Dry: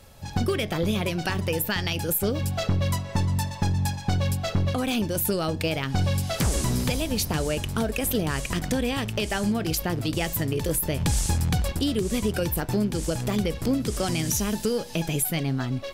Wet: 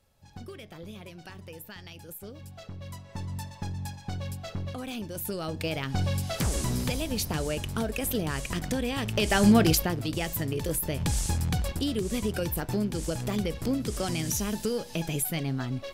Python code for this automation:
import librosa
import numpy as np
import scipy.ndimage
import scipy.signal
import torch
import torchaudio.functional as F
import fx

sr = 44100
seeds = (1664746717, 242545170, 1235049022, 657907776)

y = fx.gain(x, sr, db=fx.line((2.74, -18.0), (3.33, -10.5), (5.09, -10.5), (5.76, -4.0), (8.93, -4.0), (9.59, 8.0), (9.97, -4.0)))